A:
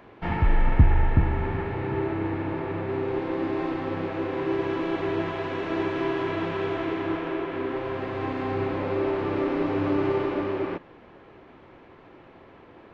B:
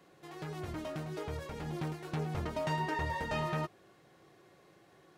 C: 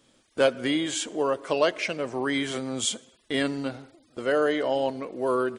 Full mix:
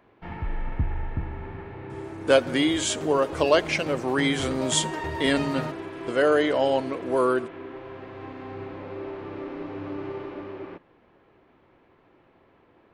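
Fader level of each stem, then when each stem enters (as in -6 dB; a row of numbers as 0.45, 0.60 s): -9.5, +2.0, +3.0 dB; 0.00, 2.05, 1.90 s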